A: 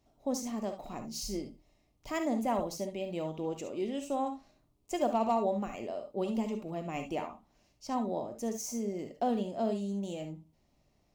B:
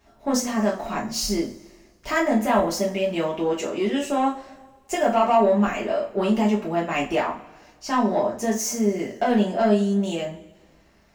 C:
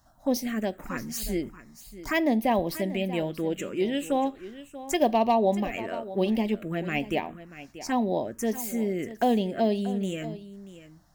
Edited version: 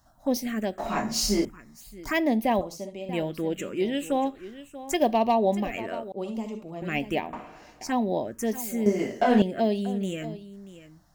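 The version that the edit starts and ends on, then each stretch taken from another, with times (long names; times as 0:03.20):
C
0:00.78–0:01.45: punch in from B
0:02.61–0:03.09: punch in from A
0:06.12–0:06.82: punch in from A
0:07.33–0:07.81: punch in from B
0:08.86–0:09.42: punch in from B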